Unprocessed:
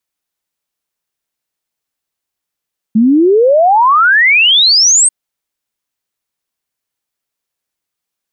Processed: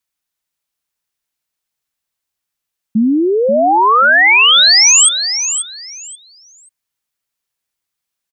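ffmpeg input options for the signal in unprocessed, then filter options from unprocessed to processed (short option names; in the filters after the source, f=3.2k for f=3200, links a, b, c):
-f lavfi -i "aevalsrc='0.562*clip(min(t,2.14-t)/0.01,0,1)*sin(2*PI*210*2.14/log(8600/210)*(exp(log(8600/210)*t/2.14)-1))':d=2.14:s=44100"
-af "equalizer=f=410:t=o:w=2.1:g=-5,aecho=1:1:534|1068|1602:0.355|0.0745|0.0156"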